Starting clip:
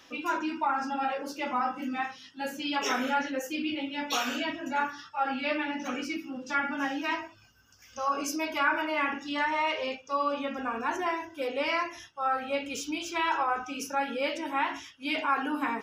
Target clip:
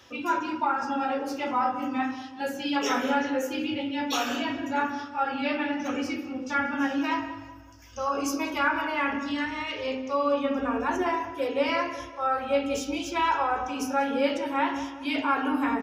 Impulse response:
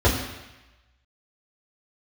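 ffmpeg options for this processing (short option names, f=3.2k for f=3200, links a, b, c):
-filter_complex "[0:a]asettb=1/sr,asplit=3[a][b][c];[a]atrim=end=9.184[d];[b]atrim=start=9.18:end=9.85,asetpts=PTS-STARTPTS,afade=t=in:d=0.004:c=qsin,afade=t=out:st=0.666:d=0.004:c=qsin,equalizer=f=820:w=1.2:g=-12[e];[c]atrim=start=9.846[f];[d][e]acrossfade=d=0.004:c1=hsin:c2=qsin[g];[g][f]acrossfade=d=0.004:c1=qsin:c2=hsin,asplit=2[h][i];[i]adelay=188,lowpass=f=2.1k:p=1,volume=-12dB,asplit=2[j][k];[k]adelay=188,lowpass=f=2.1k:p=1,volume=0.45,asplit=2[l][m];[m]adelay=188,lowpass=f=2.1k:p=1,volume=0.45,asplit=2[n][o];[o]adelay=188,lowpass=f=2.1k:p=1,volume=0.45,asplit=2[p][q];[q]adelay=188,lowpass=f=2.1k:p=1,volume=0.45[r];[h][j][l][n][p][r]amix=inputs=6:normalize=0,asplit=2[s][t];[1:a]atrim=start_sample=2205[u];[t][u]afir=irnorm=-1:irlink=0,volume=-23.5dB[v];[s][v]amix=inputs=2:normalize=0"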